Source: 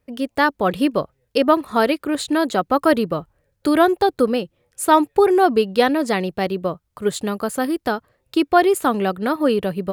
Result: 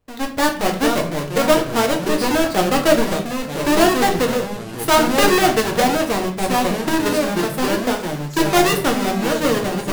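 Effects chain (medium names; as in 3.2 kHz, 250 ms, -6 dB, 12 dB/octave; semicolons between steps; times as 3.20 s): square wave that keeps the level; ever faster or slower copies 348 ms, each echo -4 st, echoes 3, each echo -6 dB; formant shift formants +3 st; simulated room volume 59 m³, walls mixed, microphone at 0.53 m; trim -7 dB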